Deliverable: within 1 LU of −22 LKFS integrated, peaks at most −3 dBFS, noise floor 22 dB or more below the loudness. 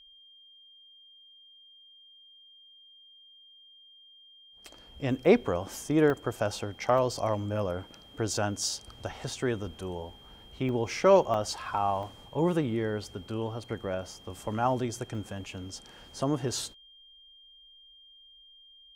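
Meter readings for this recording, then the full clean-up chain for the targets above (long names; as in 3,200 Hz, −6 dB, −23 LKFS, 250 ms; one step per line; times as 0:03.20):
number of dropouts 6; longest dropout 1.1 ms; interfering tone 3,200 Hz; level of the tone −53 dBFS; integrated loudness −30.0 LKFS; sample peak −9.0 dBFS; target loudness −22.0 LKFS
→ repair the gap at 0:06.10/0:06.98/0:10.69/0:11.34/0:12.03/0:15.15, 1.1 ms
notch filter 3,200 Hz, Q 30
level +8 dB
brickwall limiter −3 dBFS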